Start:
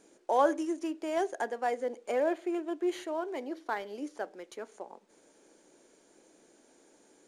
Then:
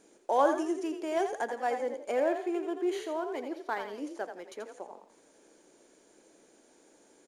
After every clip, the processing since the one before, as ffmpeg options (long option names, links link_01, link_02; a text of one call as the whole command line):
ffmpeg -i in.wav -filter_complex "[0:a]asplit=5[link_01][link_02][link_03][link_04][link_05];[link_02]adelay=84,afreqshift=38,volume=-8dB[link_06];[link_03]adelay=168,afreqshift=76,volume=-17.9dB[link_07];[link_04]adelay=252,afreqshift=114,volume=-27.8dB[link_08];[link_05]adelay=336,afreqshift=152,volume=-37.7dB[link_09];[link_01][link_06][link_07][link_08][link_09]amix=inputs=5:normalize=0" out.wav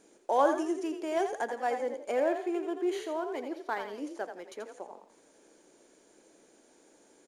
ffmpeg -i in.wav -af anull out.wav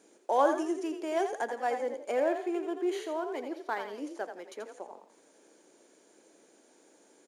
ffmpeg -i in.wav -af "highpass=180" out.wav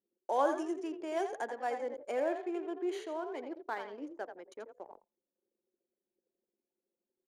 ffmpeg -i in.wav -af "anlmdn=0.0398,volume=-4.5dB" out.wav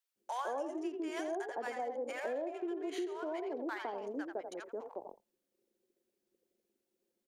ffmpeg -i in.wav -filter_complex "[0:a]acrossover=split=930[link_01][link_02];[link_01]adelay=160[link_03];[link_03][link_02]amix=inputs=2:normalize=0,acompressor=threshold=-42dB:ratio=6,volume=6.5dB" out.wav